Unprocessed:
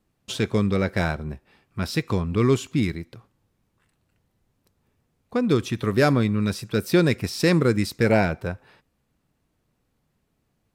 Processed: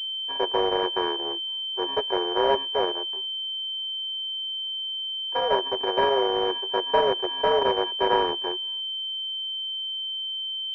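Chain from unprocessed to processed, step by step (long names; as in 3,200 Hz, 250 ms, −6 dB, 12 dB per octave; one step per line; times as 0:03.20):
samples sorted by size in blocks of 64 samples
frequency shifter +270 Hz
switching amplifier with a slow clock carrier 3,100 Hz
level −2 dB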